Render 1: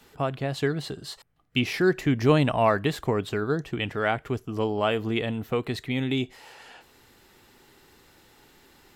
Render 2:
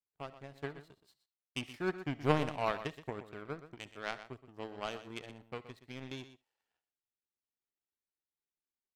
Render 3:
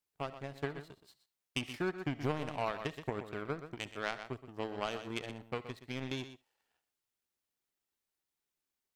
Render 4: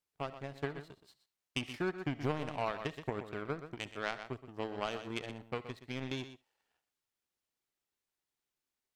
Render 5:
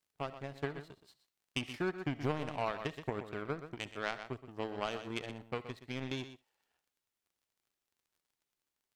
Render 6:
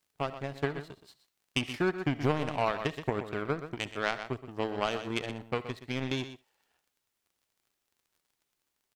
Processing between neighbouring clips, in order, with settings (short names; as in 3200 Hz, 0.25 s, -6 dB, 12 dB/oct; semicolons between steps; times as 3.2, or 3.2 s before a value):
power-law curve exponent 2; echo 0.123 s -13 dB; reverb, pre-delay 40 ms, DRR 19 dB; gain -4 dB
compressor 5:1, threshold -37 dBFS, peak gain reduction 15 dB; gain +6 dB
high shelf 10000 Hz -6 dB
crackle 36/s -63 dBFS
speakerphone echo 80 ms, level -29 dB; gain +6.5 dB